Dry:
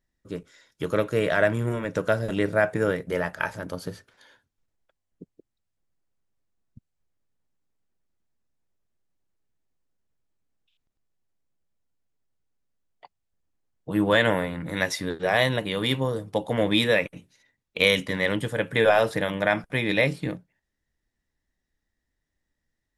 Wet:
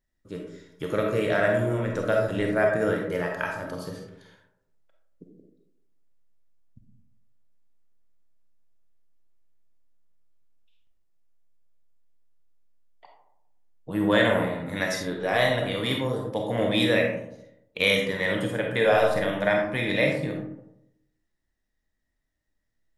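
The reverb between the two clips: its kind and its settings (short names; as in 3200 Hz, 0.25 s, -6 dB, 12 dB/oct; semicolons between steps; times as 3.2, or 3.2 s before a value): digital reverb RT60 0.83 s, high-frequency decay 0.35×, pre-delay 5 ms, DRR 0.5 dB; gain -3.5 dB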